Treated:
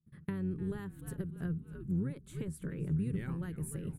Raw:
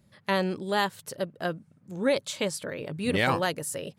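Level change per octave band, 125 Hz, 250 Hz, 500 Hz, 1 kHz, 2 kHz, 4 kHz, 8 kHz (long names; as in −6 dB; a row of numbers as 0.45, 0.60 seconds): +1.5 dB, −4.0 dB, −16.5 dB, −25.5 dB, −21.5 dB, below −25 dB, −14.0 dB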